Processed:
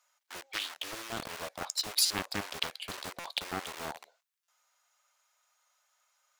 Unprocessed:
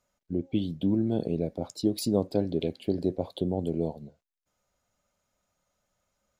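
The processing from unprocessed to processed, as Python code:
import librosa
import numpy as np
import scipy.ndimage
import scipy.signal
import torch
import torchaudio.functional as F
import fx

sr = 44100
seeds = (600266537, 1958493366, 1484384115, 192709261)

p1 = fx.quant_dither(x, sr, seeds[0], bits=6, dither='none')
p2 = x + F.gain(torch.from_numpy(p1), -8.0).numpy()
p3 = scipy.signal.sosfilt(scipy.signal.butter(4, 880.0, 'highpass', fs=sr, output='sos'), p2)
p4 = fx.buffer_glitch(p3, sr, at_s=(2.05, 3.19, 4.43), block=256, repeats=8)
p5 = fx.doppler_dist(p4, sr, depth_ms=0.91)
y = F.gain(torch.from_numpy(p5), 7.0).numpy()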